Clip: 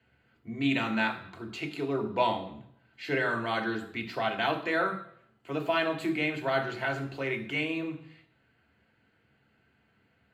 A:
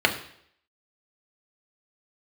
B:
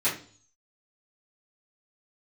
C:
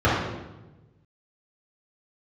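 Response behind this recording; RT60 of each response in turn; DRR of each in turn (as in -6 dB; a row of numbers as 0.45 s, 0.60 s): A; 0.65 s, 0.45 s, 1.1 s; 2.0 dB, -12.0 dB, -10.0 dB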